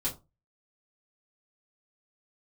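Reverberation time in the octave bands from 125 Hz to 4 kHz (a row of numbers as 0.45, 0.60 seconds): 0.40, 0.30, 0.25, 0.25, 0.15, 0.15 seconds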